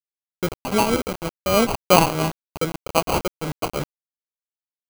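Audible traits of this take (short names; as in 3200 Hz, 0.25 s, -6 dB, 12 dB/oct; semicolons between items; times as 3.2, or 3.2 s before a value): aliases and images of a low sample rate 1800 Hz, jitter 0%; tremolo triangle 3.2 Hz, depth 75%; a quantiser's noise floor 6-bit, dither none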